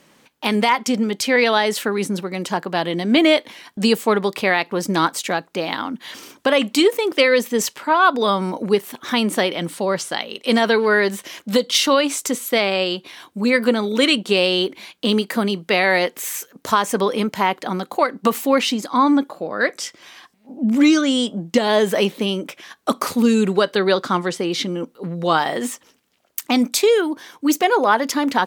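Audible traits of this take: noise floor -58 dBFS; spectral tilt -3.5 dB/oct

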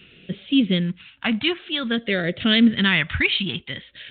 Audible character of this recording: phasing stages 2, 0.53 Hz, lowest notch 390–1000 Hz; µ-law

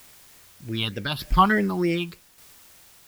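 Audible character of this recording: phasing stages 6, 3.3 Hz, lowest notch 480–1100 Hz; a quantiser's noise floor 10-bit, dither triangular; tremolo saw down 0.84 Hz, depth 55%

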